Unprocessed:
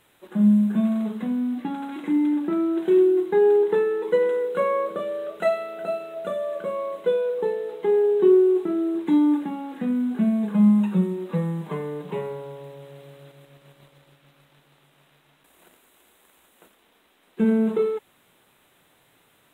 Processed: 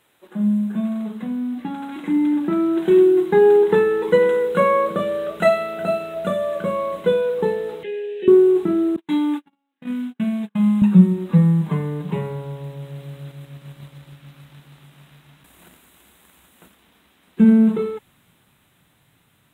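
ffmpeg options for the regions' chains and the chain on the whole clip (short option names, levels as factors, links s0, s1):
-filter_complex "[0:a]asettb=1/sr,asplit=3[s0][s1][s2];[s0]atrim=end=7.834[s3];[s1]atrim=start=7.83:end=8.28,asetpts=PTS-STARTPTS,afade=t=in:d=0.004:c=qsin,afade=t=out:st=0.446:d=0.004:c=qsin,asplit=3[s4][s5][s6];[s4]bandpass=f=530:t=q:w=8,volume=1[s7];[s5]bandpass=f=1840:t=q:w=8,volume=0.501[s8];[s6]bandpass=f=2480:t=q:w=8,volume=0.355[s9];[s7][s8][s9]amix=inputs=3:normalize=0,highshelf=f=1800:t=q:w=1.5:g=12.5[s10];[s2]atrim=start=8.276[s11];[s3][s10]acrossfade=d=0.004:c1=hsin:c2=qsin[s12];[s12][s11]acrossfade=d=0.004:c1=qsin:c2=hsin,asettb=1/sr,asplit=3[s13][s14][s15];[s13]atrim=end=8.964[s16];[s14]atrim=start=8.96:end=10.82,asetpts=PTS-STARTPTS,afade=t=in:d=0.004:c=qsin,afade=t=out:st=1.856:d=0.004:c=qsin,agate=range=0.00794:threshold=0.0562:ratio=16:release=100:detection=peak,highpass=f=680:p=1,equalizer=f=2900:t=o:w=0.96:g=6[s17];[s15]atrim=start=10.816[s18];[s16][s17]acrossfade=d=0.004:c1=hsin:c2=qsin[s19];[s19][s18]acrossfade=d=0.004:c1=qsin:c2=hsin,highpass=f=120:p=1,asubboost=boost=7:cutoff=160,dynaudnorm=f=530:g=9:m=3.76,volume=0.891"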